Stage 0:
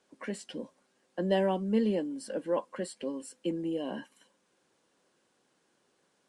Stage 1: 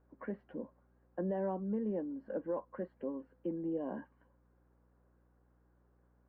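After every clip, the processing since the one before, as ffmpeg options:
ffmpeg -i in.wav -af "lowpass=frequency=1500:width=0.5412,lowpass=frequency=1500:width=1.3066,alimiter=level_in=1dB:limit=-24dB:level=0:latency=1:release=287,volume=-1dB,aeval=exprs='val(0)+0.000501*(sin(2*PI*60*n/s)+sin(2*PI*2*60*n/s)/2+sin(2*PI*3*60*n/s)/3+sin(2*PI*4*60*n/s)/4+sin(2*PI*5*60*n/s)/5)':channel_layout=same,volume=-3dB" out.wav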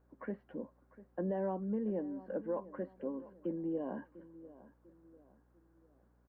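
ffmpeg -i in.wav -filter_complex "[0:a]asplit=2[link_01][link_02];[link_02]adelay=697,lowpass=frequency=2100:poles=1,volume=-17dB,asplit=2[link_03][link_04];[link_04]adelay=697,lowpass=frequency=2100:poles=1,volume=0.4,asplit=2[link_05][link_06];[link_06]adelay=697,lowpass=frequency=2100:poles=1,volume=0.4[link_07];[link_01][link_03][link_05][link_07]amix=inputs=4:normalize=0" out.wav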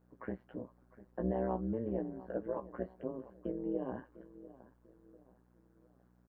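ffmpeg -i in.wav -filter_complex "[0:a]tremolo=f=120:d=0.889,asplit=2[link_01][link_02];[link_02]adelay=16,volume=-6dB[link_03];[link_01][link_03]amix=inputs=2:normalize=0,volume=3dB" out.wav

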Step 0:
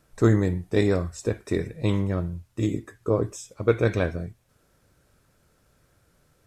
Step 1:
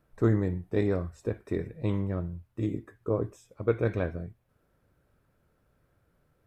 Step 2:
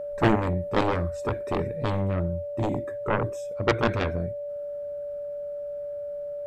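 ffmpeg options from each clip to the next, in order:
ffmpeg -i in.wav -af "equalizer=frequency=6800:width_type=o:width=2:gain=-14,volume=-5dB" out.wav
ffmpeg -i in.wav -af "aeval=exprs='0.251*(cos(1*acos(clip(val(0)/0.251,-1,1)))-cos(1*PI/2))+0.126*(cos(7*acos(clip(val(0)/0.251,-1,1)))-cos(7*PI/2))':channel_layout=same,aeval=exprs='val(0)+0.0282*sin(2*PI*580*n/s)':channel_layout=same" out.wav

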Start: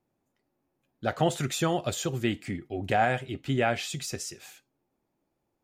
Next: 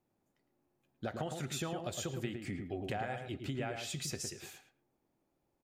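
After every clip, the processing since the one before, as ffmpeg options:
ffmpeg -i in.wav -filter_complex "[0:a]acompressor=threshold=-33dB:ratio=10,asplit=2[link_01][link_02];[link_02]adelay=110,lowpass=frequency=1500:poles=1,volume=-4.5dB,asplit=2[link_03][link_04];[link_04]adelay=110,lowpass=frequency=1500:poles=1,volume=0.2,asplit=2[link_05][link_06];[link_06]adelay=110,lowpass=frequency=1500:poles=1,volume=0.2[link_07];[link_03][link_05][link_07]amix=inputs=3:normalize=0[link_08];[link_01][link_08]amix=inputs=2:normalize=0,volume=-2.5dB" out.wav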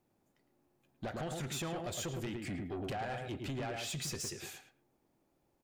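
ffmpeg -i in.wav -af "asoftclip=type=tanh:threshold=-38.5dB,volume=4dB" out.wav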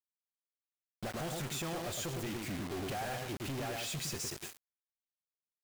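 ffmpeg -i in.wav -af "acrusher=bits=6:mix=0:aa=0.000001" out.wav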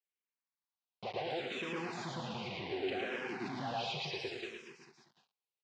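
ffmpeg -i in.wav -filter_complex "[0:a]highpass=280,equalizer=frequency=300:width_type=q:width=4:gain=-8,equalizer=frequency=610:width_type=q:width=4:gain=-8,equalizer=frequency=1300:width_type=q:width=4:gain=-8,equalizer=frequency=1800:width_type=q:width=4:gain=-5,equalizer=frequency=3400:width_type=q:width=4:gain=-4,lowpass=frequency=3900:width=0.5412,lowpass=frequency=3900:width=1.3066,aecho=1:1:110|236.5|382|549.3|741.7:0.631|0.398|0.251|0.158|0.1,asplit=2[link_01][link_02];[link_02]afreqshift=-0.68[link_03];[link_01][link_03]amix=inputs=2:normalize=1,volume=6dB" out.wav

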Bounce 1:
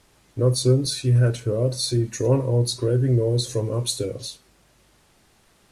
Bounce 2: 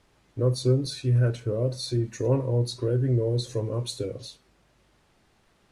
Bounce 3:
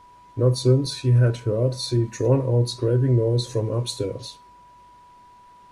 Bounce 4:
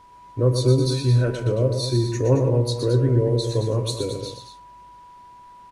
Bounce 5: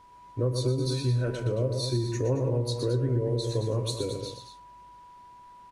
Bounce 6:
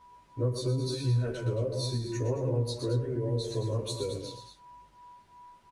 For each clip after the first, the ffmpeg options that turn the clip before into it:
ffmpeg -i in.wav -af "highshelf=frequency=6400:gain=-12,volume=-4dB" out.wav
ffmpeg -i in.wav -af "aeval=exprs='val(0)+0.00251*sin(2*PI*980*n/s)':channel_layout=same,volume=4.5dB" out.wav
ffmpeg -i in.wav -af "aecho=1:1:119.5|221.6:0.447|0.316" out.wav
ffmpeg -i in.wav -af "acompressor=threshold=-18dB:ratio=6,volume=-4.5dB" out.wav
ffmpeg -i in.wav -filter_complex "[0:a]asplit=2[link_01][link_02];[link_02]adelay=11.5,afreqshift=-2.8[link_03];[link_01][link_03]amix=inputs=2:normalize=1" out.wav

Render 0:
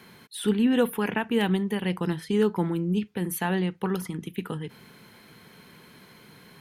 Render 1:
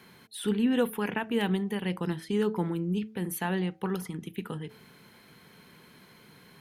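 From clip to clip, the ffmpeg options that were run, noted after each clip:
ffmpeg -i in.wav -af "bandreject=frequency=108.9:width_type=h:width=4,bandreject=frequency=217.8:width_type=h:width=4,bandreject=frequency=326.7:width_type=h:width=4,bandreject=frequency=435.6:width_type=h:width=4,bandreject=frequency=544.5:width_type=h:width=4,bandreject=frequency=653.4:width_type=h:width=4,bandreject=frequency=762.3:width_type=h:width=4,volume=-3.5dB" out.wav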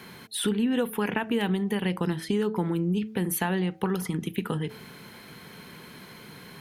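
ffmpeg -i in.wav -af "acompressor=threshold=-33dB:ratio=4,volume=9dB" out.wav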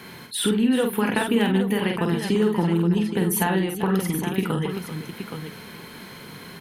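ffmpeg -i in.wav -af "aecho=1:1:47|388|821:0.596|0.251|0.376,volume=3.5dB" out.wav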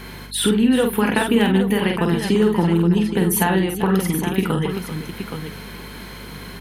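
ffmpeg -i in.wav -af "aeval=exprs='val(0)+0.00708*(sin(2*PI*50*n/s)+sin(2*PI*2*50*n/s)/2+sin(2*PI*3*50*n/s)/3+sin(2*PI*4*50*n/s)/4+sin(2*PI*5*50*n/s)/5)':channel_layout=same,volume=4dB" out.wav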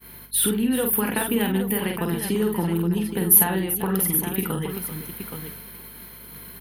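ffmpeg -i in.wav -af "agate=range=-33dB:threshold=-30dB:ratio=3:detection=peak,aexciter=amount=10.8:drive=2.2:freq=10000,volume=-6.5dB" out.wav

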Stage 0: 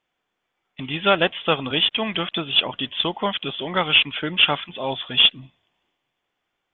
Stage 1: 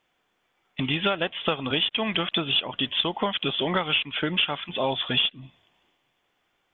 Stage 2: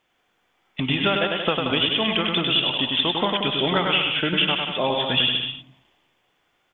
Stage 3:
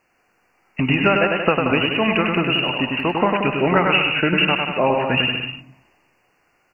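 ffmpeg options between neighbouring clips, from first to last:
ffmpeg -i in.wav -af "acompressor=threshold=-27dB:ratio=8,volume=5.5dB" out.wav
ffmpeg -i in.wav -af "aecho=1:1:100|180|244|295.2|336.2:0.631|0.398|0.251|0.158|0.1,volume=2dB" out.wav
ffmpeg -i in.wav -af "asuperstop=centerf=3500:order=20:qfactor=2.6,volume=5.5dB" out.wav

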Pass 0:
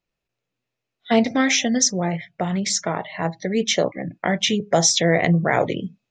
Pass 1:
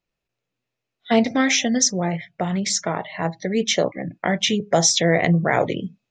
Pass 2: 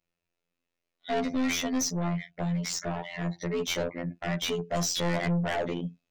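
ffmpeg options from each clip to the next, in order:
ffmpeg -i in.wav -af anull out.wav
ffmpeg -i in.wav -af "afftfilt=real='hypot(re,im)*cos(PI*b)':imag='0':win_size=2048:overlap=0.75,aeval=exprs='(tanh(15.8*val(0)+0.1)-tanh(0.1))/15.8':channel_layout=same" out.wav

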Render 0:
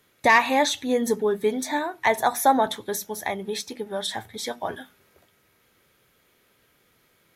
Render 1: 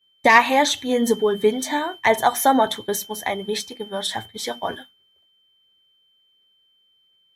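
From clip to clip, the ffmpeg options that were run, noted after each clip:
ffmpeg -i in.wav -af "aphaser=in_gain=1:out_gain=1:delay=4.3:decay=0.27:speed=1.4:type=sinusoidal,aeval=exprs='val(0)+0.00891*sin(2*PI*3100*n/s)':channel_layout=same,agate=range=-33dB:threshold=-31dB:ratio=3:detection=peak,volume=3dB" out.wav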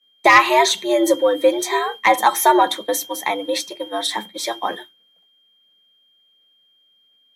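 ffmpeg -i in.wav -filter_complex "[0:a]afreqshift=100,asplit=2[link_01][link_02];[link_02]aeval=exprs='1*sin(PI/2*1.58*val(0)/1)':channel_layout=same,volume=-6.5dB[link_03];[link_01][link_03]amix=inputs=2:normalize=0,volume=-3.5dB" out.wav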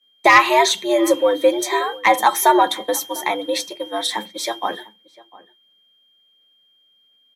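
ffmpeg -i in.wav -filter_complex "[0:a]asplit=2[link_01][link_02];[link_02]adelay=699.7,volume=-21dB,highshelf=frequency=4000:gain=-15.7[link_03];[link_01][link_03]amix=inputs=2:normalize=0" out.wav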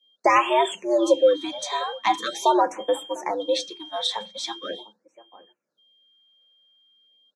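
ffmpeg -i in.wav -af "highpass=120,equalizer=frequency=520:width_type=q:width=4:gain=6,equalizer=frequency=2000:width_type=q:width=4:gain=-9,equalizer=frequency=3500:width_type=q:width=4:gain=6,lowpass=frequency=7400:width=0.5412,lowpass=frequency=7400:width=1.3066,afftfilt=real='re*(1-between(b*sr/1024,300*pow(5200/300,0.5+0.5*sin(2*PI*0.42*pts/sr))/1.41,300*pow(5200/300,0.5+0.5*sin(2*PI*0.42*pts/sr))*1.41))':imag='im*(1-between(b*sr/1024,300*pow(5200/300,0.5+0.5*sin(2*PI*0.42*pts/sr))/1.41,300*pow(5200/300,0.5+0.5*sin(2*PI*0.42*pts/sr))*1.41))':win_size=1024:overlap=0.75,volume=-5.5dB" out.wav

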